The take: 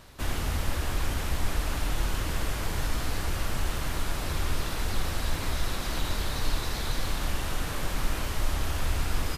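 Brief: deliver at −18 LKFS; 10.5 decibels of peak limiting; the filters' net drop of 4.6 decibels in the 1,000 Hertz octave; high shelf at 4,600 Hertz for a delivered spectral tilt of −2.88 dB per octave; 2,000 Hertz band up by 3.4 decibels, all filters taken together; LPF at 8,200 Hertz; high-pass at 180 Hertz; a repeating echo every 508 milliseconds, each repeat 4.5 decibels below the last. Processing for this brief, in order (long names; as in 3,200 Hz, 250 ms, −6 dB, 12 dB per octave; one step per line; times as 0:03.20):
high-pass filter 180 Hz
low-pass filter 8,200 Hz
parametric band 1,000 Hz −8.5 dB
parametric band 2,000 Hz +7.5 dB
high-shelf EQ 4,600 Hz −3.5 dB
brickwall limiter −32.5 dBFS
repeating echo 508 ms, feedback 60%, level −4.5 dB
level +20 dB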